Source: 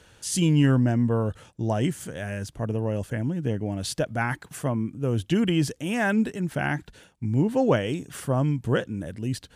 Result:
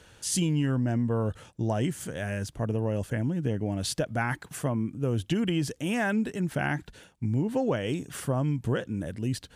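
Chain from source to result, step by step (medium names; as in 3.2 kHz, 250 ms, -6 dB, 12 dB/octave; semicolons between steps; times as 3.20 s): compression, threshold -23 dBFS, peak gain reduction 8 dB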